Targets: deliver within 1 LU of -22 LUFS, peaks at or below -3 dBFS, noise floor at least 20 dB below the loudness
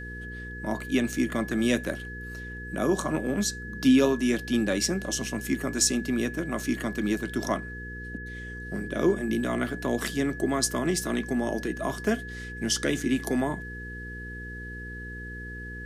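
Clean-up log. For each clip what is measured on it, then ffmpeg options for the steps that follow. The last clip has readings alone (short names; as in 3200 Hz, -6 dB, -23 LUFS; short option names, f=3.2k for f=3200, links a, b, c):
hum 60 Hz; harmonics up to 480 Hz; hum level -38 dBFS; steady tone 1700 Hz; tone level -39 dBFS; loudness -28.5 LUFS; peak -10.0 dBFS; loudness target -22.0 LUFS
-> -af "bandreject=f=60:t=h:w=4,bandreject=f=120:t=h:w=4,bandreject=f=180:t=h:w=4,bandreject=f=240:t=h:w=4,bandreject=f=300:t=h:w=4,bandreject=f=360:t=h:w=4,bandreject=f=420:t=h:w=4,bandreject=f=480:t=h:w=4"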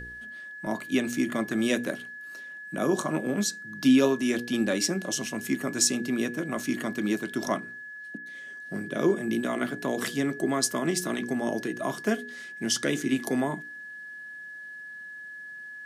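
hum none; steady tone 1700 Hz; tone level -39 dBFS
-> -af "bandreject=f=1.7k:w=30"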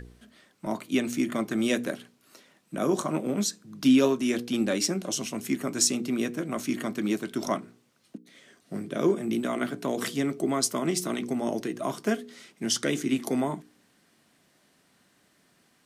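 steady tone none; loudness -28.0 LUFS; peak -10.0 dBFS; loudness target -22.0 LUFS
-> -af "volume=6dB"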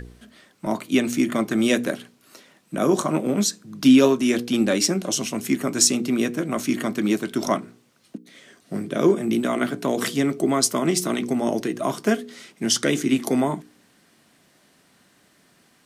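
loudness -22.0 LUFS; peak -4.0 dBFS; noise floor -60 dBFS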